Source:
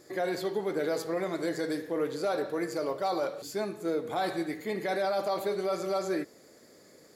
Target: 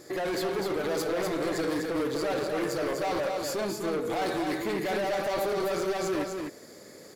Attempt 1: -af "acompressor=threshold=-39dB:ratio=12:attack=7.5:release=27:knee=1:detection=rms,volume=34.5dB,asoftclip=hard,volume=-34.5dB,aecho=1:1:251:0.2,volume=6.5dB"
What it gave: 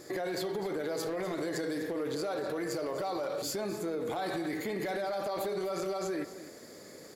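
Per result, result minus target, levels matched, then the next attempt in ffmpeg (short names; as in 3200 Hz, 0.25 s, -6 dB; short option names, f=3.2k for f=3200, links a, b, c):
compressor: peak gain reduction +9 dB; echo-to-direct -9.5 dB
-af "acompressor=threshold=-29dB:ratio=12:attack=7.5:release=27:knee=1:detection=rms,volume=34.5dB,asoftclip=hard,volume=-34.5dB,aecho=1:1:251:0.2,volume=6.5dB"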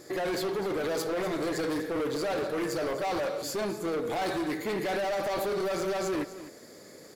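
echo-to-direct -9.5 dB
-af "acompressor=threshold=-29dB:ratio=12:attack=7.5:release=27:knee=1:detection=rms,volume=34.5dB,asoftclip=hard,volume=-34.5dB,aecho=1:1:251:0.596,volume=6.5dB"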